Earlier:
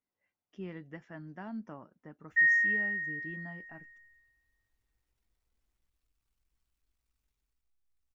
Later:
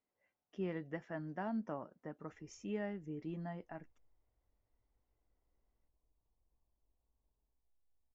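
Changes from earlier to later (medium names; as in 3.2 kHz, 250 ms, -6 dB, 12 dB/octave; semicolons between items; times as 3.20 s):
background: add steep low-pass 1.1 kHz 96 dB/octave; master: add peaking EQ 580 Hz +6.5 dB 1.4 oct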